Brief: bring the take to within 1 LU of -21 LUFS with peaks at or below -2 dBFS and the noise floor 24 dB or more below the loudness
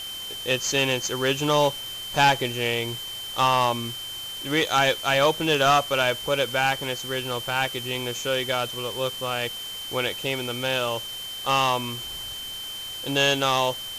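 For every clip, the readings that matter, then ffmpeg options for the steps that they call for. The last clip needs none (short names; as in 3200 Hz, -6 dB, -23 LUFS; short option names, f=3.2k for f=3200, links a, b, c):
steady tone 3100 Hz; tone level -33 dBFS; noise floor -35 dBFS; noise floor target -48 dBFS; loudness -24.0 LUFS; peak -10.5 dBFS; loudness target -21.0 LUFS
-> -af "bandreject=f=3.1k:w=30"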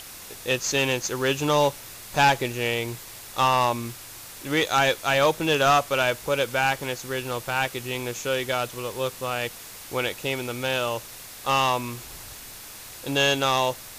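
steady tone none; noise floor -42 dBFS; noise floor target -49 dBFS
-> -af "afftdn=nr=7:nf=-42"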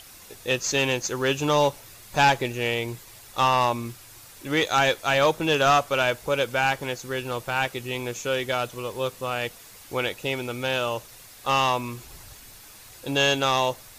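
noise floor -47 dBFS; noise floor target -49 dBFS
-> -af "afftdn=nr=6:nf=-47"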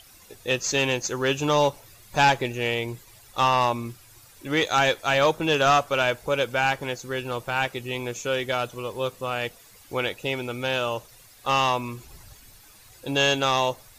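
noise floor -52 dBFS; loudness -24.5 LUFS; peak -10.0 dBFS; loudness target -21.0 LUFS
-> -af "volume=3.5dB"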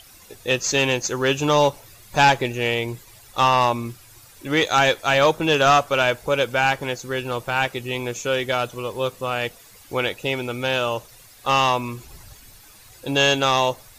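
loudness -21.0 LUFS; peak -6.5 dBFS; noise floor -48 dBFS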